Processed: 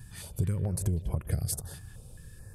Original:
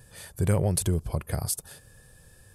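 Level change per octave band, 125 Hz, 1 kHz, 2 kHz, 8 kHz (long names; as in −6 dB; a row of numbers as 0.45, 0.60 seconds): −2.5, −11.0, −8.0, −6.0 decibels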